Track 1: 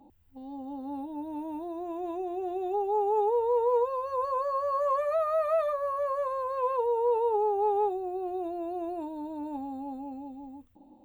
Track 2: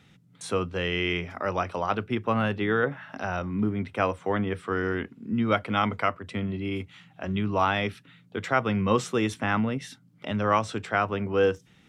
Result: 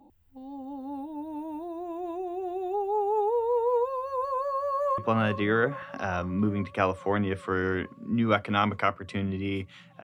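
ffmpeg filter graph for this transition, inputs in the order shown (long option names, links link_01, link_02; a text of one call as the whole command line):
ffmpeg -i cue0.wav -i cue1.wav -filter_complex "[0:a]apad=whole_dur=10.03,atrim=end=10.03,atrim=end=4.982[link_01];[1:a]atrim=start=2.178:end=7.23[link_02];[link_01][link_02]acrossfade=duration=0.004:curve1=hsin:curve2=hsin,asplit=2[link_03][link_04];[link_04]afade=type=in:start_time=4.46:duration=0.01,afade=type=out:start_time=4.98:duration=0.01,aecho=0:1:420|840|1260|1680|2100|2520|2940|3360|3780|4200|4620|5040:0.266073|0.199554|0.149666|0.112249|0.084187|0.0631403|0.0473552|0.0355164|0.0266373|0.019978|0.0149835|0.0112376[link_05];[link_03][link_05]amix=inputs=2:normalize=0" out.wav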